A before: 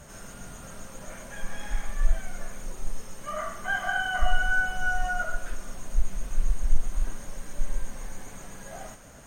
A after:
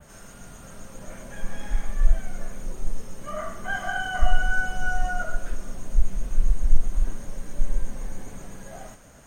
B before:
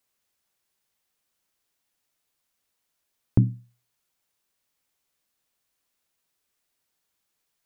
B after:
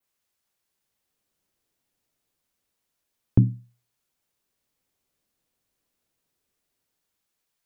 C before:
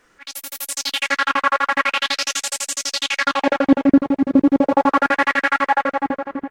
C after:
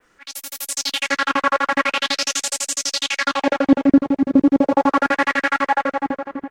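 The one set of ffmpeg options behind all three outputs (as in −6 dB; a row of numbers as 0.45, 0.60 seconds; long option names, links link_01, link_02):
-filter_complex "[0:a]adynamicequalizer=threshold=0.0112:dfrequency=6200:dqfactor=0.91:tfrequency=6200:tqfactor=0.91:attack=5:release=100:ratio=0.375:range=2:mode=boostabove:tftype=bell,acrossover=split=570|1400[link_01][link_02][link_03];[link_01]dynaudnorm=framelen=220:gausssize=9:maxgain=8.5dB[link_04];[link_04][link_02][link_03]amix=inputs=3:normalize=0,volume=-2dB"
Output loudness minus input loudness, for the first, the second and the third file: +1.5, +1.5, −0.5 LU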